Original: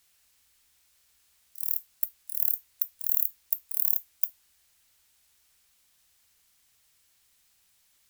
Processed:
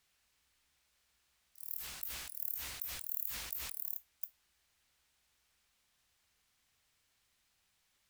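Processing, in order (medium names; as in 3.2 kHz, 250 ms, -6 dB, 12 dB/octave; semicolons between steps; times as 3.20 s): low-pass 3.2 kHz 6 dB/octave; 1.67–3.76 s: decay stretcher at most 33 dB/s; trim -3 dB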